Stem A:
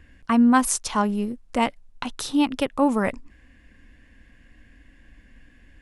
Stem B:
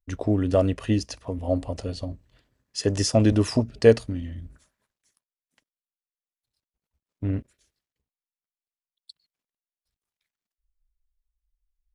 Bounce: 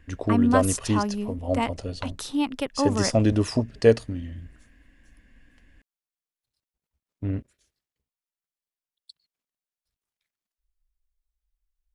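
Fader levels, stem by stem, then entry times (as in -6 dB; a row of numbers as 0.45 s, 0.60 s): -4.5 dB, -1.5 dB; 0.00 s, 0.00 s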